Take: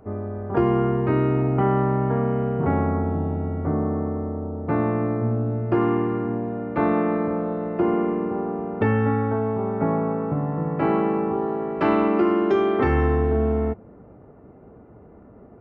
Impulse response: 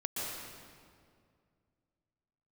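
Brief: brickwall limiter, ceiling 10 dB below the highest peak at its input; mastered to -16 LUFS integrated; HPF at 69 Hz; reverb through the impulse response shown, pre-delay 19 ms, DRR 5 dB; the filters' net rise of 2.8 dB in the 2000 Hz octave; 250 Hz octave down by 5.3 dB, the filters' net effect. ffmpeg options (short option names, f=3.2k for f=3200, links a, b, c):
-filter_complex "[0:a]highpass=69,equalizer=f=250:t=o:g=-7.5,equalizer=f=2k:t=o:g=3.5,alimiter=limit=-19dB:level=0:latency=1,asplit=2[a][b];[1:a]atrim=start_sample=2205,adelay=19[c];[b][c]afir=irnorm=-1:irlink=0,volume=-9dB[d];[a][d]amix=inputs=2:normalize=0,volume=12dB"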